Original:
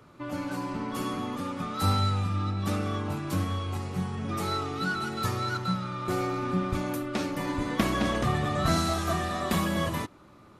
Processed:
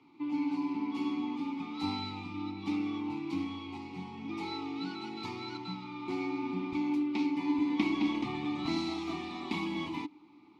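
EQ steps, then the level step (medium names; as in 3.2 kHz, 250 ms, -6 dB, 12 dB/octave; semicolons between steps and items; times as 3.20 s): vowel filter u; peaking EQ 4.4 kHz +14.5 dB 1.4 oct; +5.0 dB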